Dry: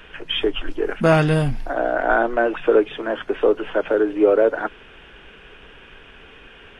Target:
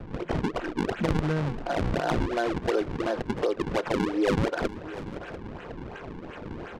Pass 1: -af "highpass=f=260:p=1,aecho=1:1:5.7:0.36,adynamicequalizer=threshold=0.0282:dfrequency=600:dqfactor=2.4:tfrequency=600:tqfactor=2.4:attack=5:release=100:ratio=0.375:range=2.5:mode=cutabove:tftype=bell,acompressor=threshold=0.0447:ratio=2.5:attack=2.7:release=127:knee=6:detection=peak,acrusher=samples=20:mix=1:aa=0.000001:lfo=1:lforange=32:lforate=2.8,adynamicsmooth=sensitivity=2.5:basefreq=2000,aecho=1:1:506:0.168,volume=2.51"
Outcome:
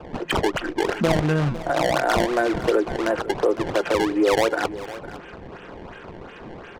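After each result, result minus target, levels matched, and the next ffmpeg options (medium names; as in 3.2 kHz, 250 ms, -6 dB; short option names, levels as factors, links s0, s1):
compression: peak gain reduction -5.5 dB; echo 186 ms early; decimation with a swept rate: distortion -7 dB
-af "highpass=f=260:p=1,aecho=1:1:5.7:0.36,adynamicequalizer=threshold=0.0282:dfrequency=600:dqfactor=2.4:tfrequency=600:tqfactor=2.4:attack=5:release=100:ratio=0.375:range=2.5:mode=cutabove:tftype=bell,acompressor=threshold=0.015:ratio=2.5:attack=2.7:release=127:knee=6:detection=peak,acrusher=samples=20:mix=1:aa=0.000001:lfo=1:lforange=32:lforate=2.8,adynamicsmooth=sensitivity=2.5:basefreq=2000,aecho=1:1:506:0.168,volume=2.51"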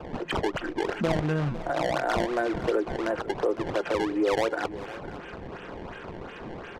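echo 186 ms early; decimation with a swept rate: distortion -7 dB
-af "highpass=f=260:p=1,aecho=1:1:5.7:0.36,adynamicequalizer=threshold=0.0282:dfrequency=600:dqfactor=2.4:tfrequency=600:tqfactor=2.4:attack=5:release=100:ratio=0.375:range=2.5:mode=cutabove:tftype=bell,acompressor=threshold=0.015:ratio=2.5:attack=2.7:release=127:knee=6:detection=peak,acrusher=samples=20:mix=1:aa=0.000001:lfo=1:lforange=32:lforate=2.8,adynamicsmooth=sensitivity=2.5:basefreq=2000,aecho=1:1:692:0.168,volume=2.51"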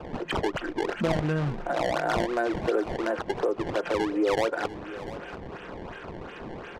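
decimation with a swept rate: distortion -7 dB
-af "highpass=f=260:p=1,aecho=1:1:5.7:0.36,adynamicequalizer=threshold=0.0282:dfrequency=600:dqfactor=2.4:tfrequency=600:tqfactor=2.4:attack=5:release=100:ratio=0.375:range=2.5:mode=cutabove:tftype=bell,acompressor=threshold=0.015:ratio=2.5:attack=2.7:release=127:knee=6:detection=peak,acrusher=samples=40:mix=1:aa=0.000001:lfo=1:lforange=64:lforate=2.8,adynamicsmooth=sensitivity=2.5:basefreq=2000,aecho=1:1:692:0.168,volume=2.51"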